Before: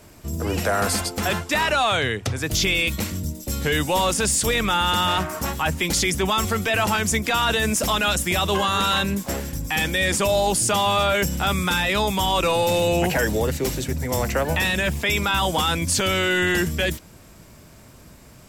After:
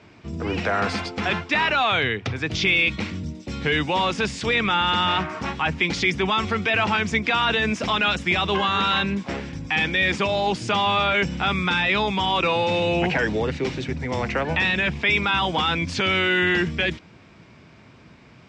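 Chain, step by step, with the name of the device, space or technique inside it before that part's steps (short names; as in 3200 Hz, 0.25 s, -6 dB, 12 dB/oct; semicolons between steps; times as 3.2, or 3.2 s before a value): guitar cabinet (speaker cabinet 100–4600 Hz, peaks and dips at 580 Hz -5 dB, 2300 Hz +5 dB, 4400 Hz -3 dB)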